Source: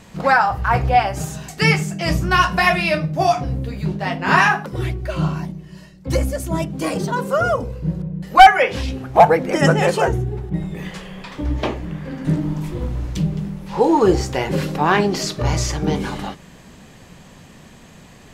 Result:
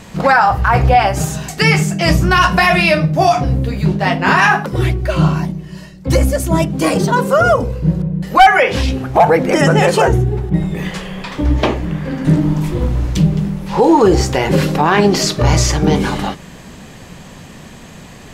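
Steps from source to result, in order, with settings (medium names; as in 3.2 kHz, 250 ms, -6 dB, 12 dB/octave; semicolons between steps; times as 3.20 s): peak limiter -10 dBFS, peak gain reduction 8.5 dB; trim +8 dB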